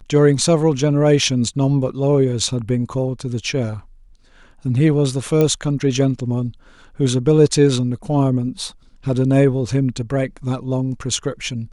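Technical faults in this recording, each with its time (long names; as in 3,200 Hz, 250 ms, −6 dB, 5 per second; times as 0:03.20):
0:05.41: click −6 dBFS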